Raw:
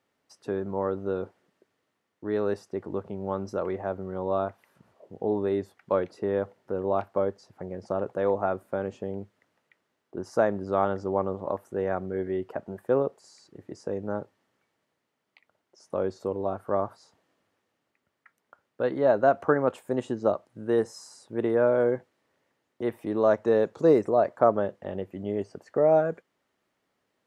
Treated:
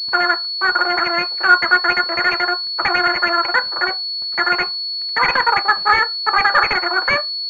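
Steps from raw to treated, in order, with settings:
Butterworth band-reject 1,000 Hz, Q 2.2
in parallel at −1 dB: brickwall limiter −17 dBFS, peak gain reduction 8 dB
on the sum: sine wavefolder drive 6 dB, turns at −6 dBFS
on a send at −4.5 dB: flat-topped bell 910 Hz −9 dB + convolution reverb RT60 0.70 s, pre-delay 3 ms
on the sum: change of speed 3.64×
switching amplifier with a slow clock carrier 4,400 Hz
level −2.5 dB

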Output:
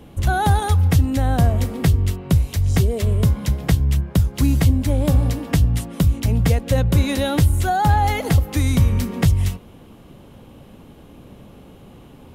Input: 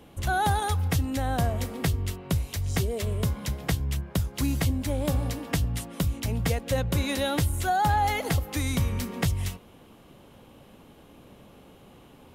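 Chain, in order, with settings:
low-shelf EQ 320 Hz +8 dB
level +3.5 dB

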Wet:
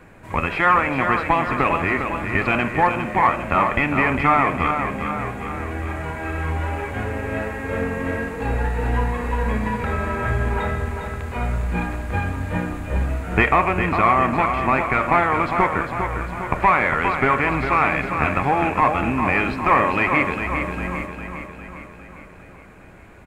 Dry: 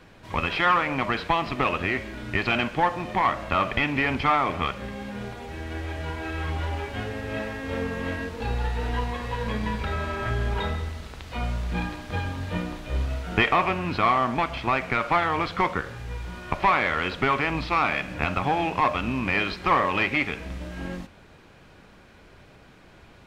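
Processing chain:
flat-topped bell 4,200 Hz −11.5 dB 1.2 octaves
on a send: repeating echo 404 ms, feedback 56%, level −7 dB
on the sum: level +4.5 dB

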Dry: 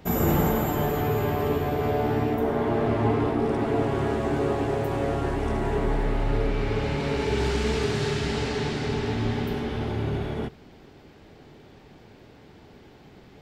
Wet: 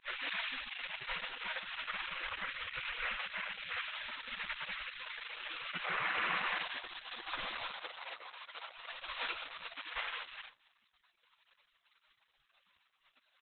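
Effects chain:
gate on every frequency bin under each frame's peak −30 dB weak
0:07.71–0:08.72: elliptic high-pass filter 390 Hz, stop band 60 dB
high-frequency loss of the air 400 metres
slap from a distant wall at 56 metres, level −23 dB
level +15.5 dB
Opus 8 kbit/s 48,000 Hz

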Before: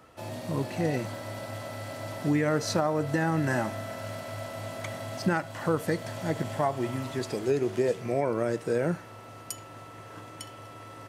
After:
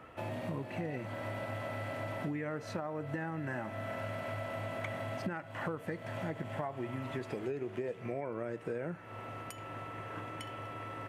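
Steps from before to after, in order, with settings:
downward compressor 6 to 1, threshold −37 dBFS, peak gain reduction 15.5 dB
high shelf with overshoot 3,500 Hz −10 dB, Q 1.5
level +1.5 dB

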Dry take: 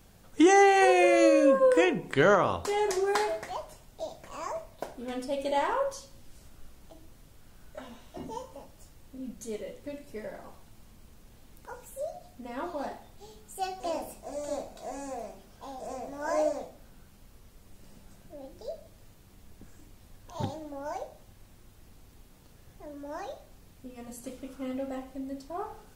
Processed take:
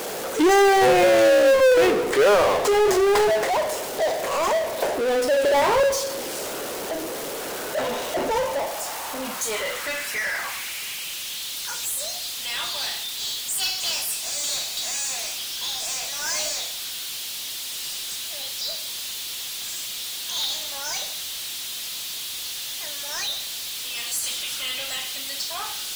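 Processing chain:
high-pass filter sweep 450 Hz → 3,500 Hz, 0:08.00–0:11.44
power curve on the samples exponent 0.35
level −5 dB

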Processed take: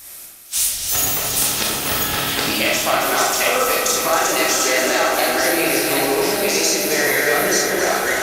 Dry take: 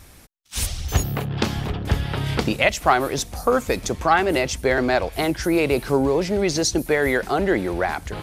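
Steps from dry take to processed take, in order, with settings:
delay that plays each chunk backwards 508 ms, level −1.5 dB
RIAA equalisation recording
downward compressor, threshold −19 dBFS, peak gain reduction 10 dB
echo machine with several playback heads 90 ms, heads first and third, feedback 72%, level −9 dB
convolution reverb RT60 0.55 s, pre-delay 4 ms, DRR −2.5 dB

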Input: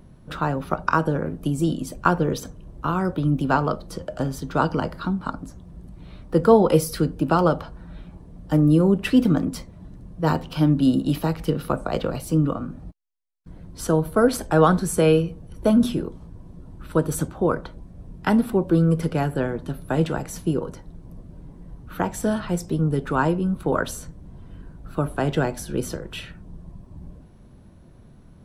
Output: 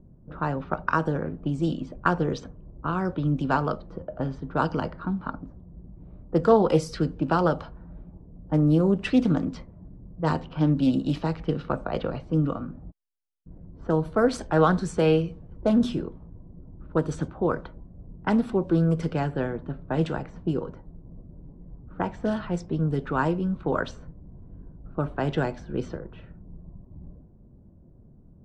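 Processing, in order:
low-pass that shuts in the quiet parts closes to 470 Hz, open at −16.5 dBFS
low-pass filter 7,900 Hz 24 dB per octave
highs frequency-modulated by the lows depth 0.17 ms
level −3.5 dB

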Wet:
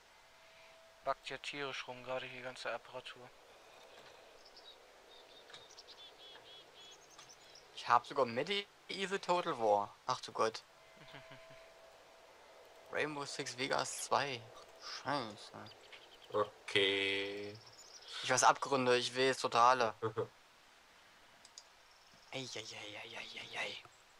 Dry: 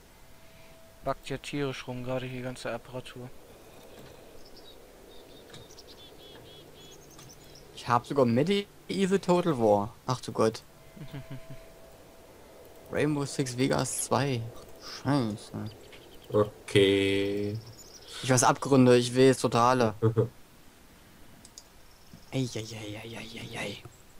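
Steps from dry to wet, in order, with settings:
three-way crossover with the lows and the highs turned down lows −18 dB, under 560 Hz, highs −15 dB, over 6,700 Hz
level −3 dB

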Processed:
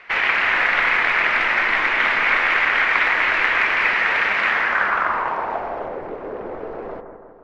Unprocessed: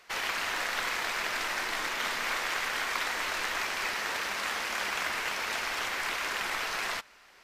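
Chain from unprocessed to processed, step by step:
bucket-brigade delay 164 ms, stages 2,048, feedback 59%, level −8 dB
low-pass filter sweep 2,200 Hz → 480 Hz, 0:04.46–0:06.09
level +9 dB

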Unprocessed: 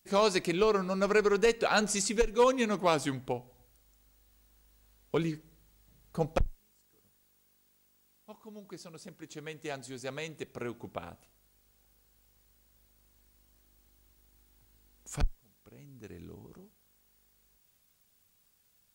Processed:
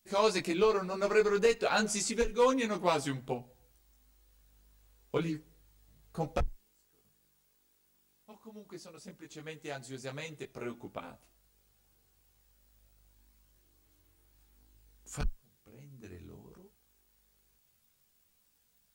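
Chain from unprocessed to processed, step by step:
multi-voice chorus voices 4, 0.26 Hz, delay 18 ms, depth 4.8 ms
level +1 dB

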